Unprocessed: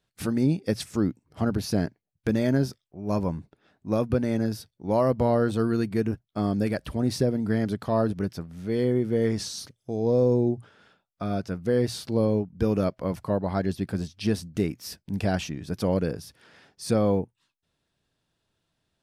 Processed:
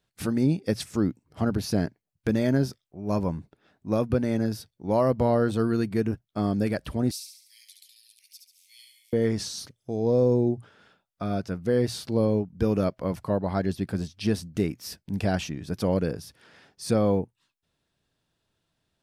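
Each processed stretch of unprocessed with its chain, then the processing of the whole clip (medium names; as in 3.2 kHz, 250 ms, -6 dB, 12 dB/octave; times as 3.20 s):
7.11–9.13 s: steep high-pass 2.2 kHz 72 dB/octave + differentiator + feedback delay 70 ms, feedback 48%, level -5.5 dB
whole clip: none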